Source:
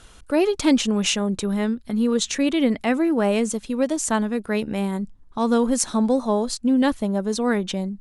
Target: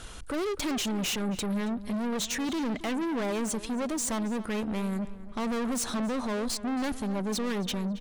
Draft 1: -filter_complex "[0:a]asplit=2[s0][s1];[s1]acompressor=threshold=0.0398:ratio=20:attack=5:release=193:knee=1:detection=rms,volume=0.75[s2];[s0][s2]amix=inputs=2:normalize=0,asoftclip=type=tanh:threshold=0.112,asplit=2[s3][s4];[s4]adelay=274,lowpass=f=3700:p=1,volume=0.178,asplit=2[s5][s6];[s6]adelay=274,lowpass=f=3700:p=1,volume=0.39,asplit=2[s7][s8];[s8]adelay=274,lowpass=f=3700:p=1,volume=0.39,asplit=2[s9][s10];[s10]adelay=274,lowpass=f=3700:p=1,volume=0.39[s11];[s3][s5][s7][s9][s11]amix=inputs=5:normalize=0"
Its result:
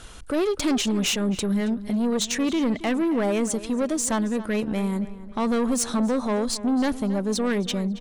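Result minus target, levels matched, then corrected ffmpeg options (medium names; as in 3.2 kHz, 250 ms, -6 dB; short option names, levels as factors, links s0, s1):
saturation: distortion -6 dB
-filter_complex "[0:a]asplit=2[s0][s1];[s1]acompressor=threshold=0.0398:ratio=20:attack=5:release=193:knee=1:detection=rms,volume=0.75[s2];[s0][s2]amix=inputs=2:normalize=0,asoftclip=type=tanh:threshold=0.0376,asplit=2[s3][s4];[s4]adelay=274,lowpass=f=3700:p=1,volume=0.178,asplit=2[s5][s6];[s6]adelay=274,lowpass=f=3700:p=1,volume=0.39,asplit=2[s7][s8];[s8]adelay=274,lowpass=f=3700:p=1,volume=0.39,asplit=2[s9][s10];[s10]adelay=274,lowpass=f=3700:p=1,volume=0.39[s11];[s3][s5][s7][s9][s11]amix=inputs=5:normalize=0"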